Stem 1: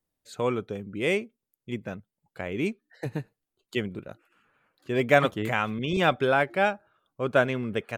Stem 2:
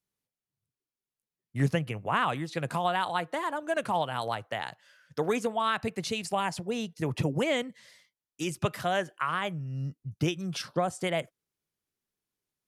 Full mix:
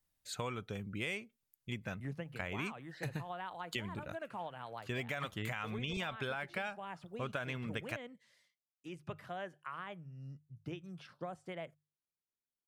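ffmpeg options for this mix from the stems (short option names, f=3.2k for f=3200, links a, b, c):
-filter_complex "[0:a]equalizer=f=370:t=o:w=2.2:g=-12,alimiter=limit=-21dB:level=0:latency=1:release=66,volume=2.5dB[a];[1:a]bandreject=f=50:t=h:w=6,bandreject=f=100:t=h:w=6,bandreject=f=150:t=h:w=6,acrossover=split=3300[b][c];[c]acompressor=threshold=-56dB:ratio=4:attack=1:release=60[d];[b][d]amix=inputs=2:normalize=0,adelay=450,volume=-14dB[e];[a][e]amix=inputs=2:normalize=0,acompressor=threshold=-36dB:ratio=6"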